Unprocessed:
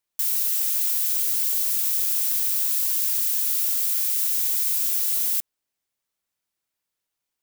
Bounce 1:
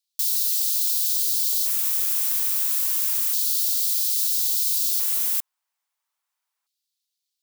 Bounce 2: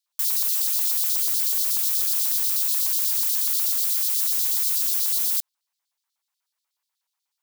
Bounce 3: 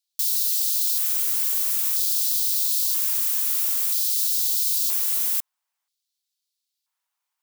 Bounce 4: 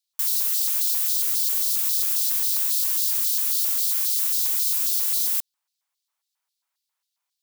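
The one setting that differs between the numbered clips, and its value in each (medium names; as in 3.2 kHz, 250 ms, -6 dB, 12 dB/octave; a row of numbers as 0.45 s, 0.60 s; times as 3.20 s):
LFO high-pass, rate: 0.3 Hz, 8.2 Hz, 0.51 Hz, 3.7 Hz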